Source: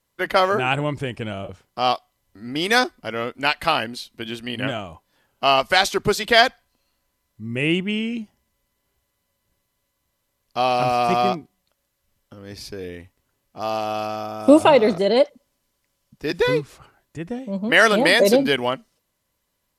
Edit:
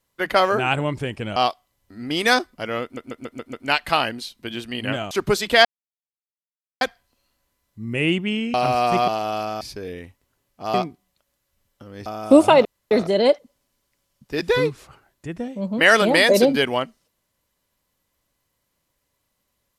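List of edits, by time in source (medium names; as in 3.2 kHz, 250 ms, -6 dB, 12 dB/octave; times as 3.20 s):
1.36–1.81 s: delete
3.28 s: stutter 0.14 s, 6 plays
4.86–5.89 s: delete
6.43 s: insert silence 1.16 s
8.16–10.71 s: delete
11.25–12.57 s: swap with 13.70–14.23 s
14.82 s: insert room tone 0.26 s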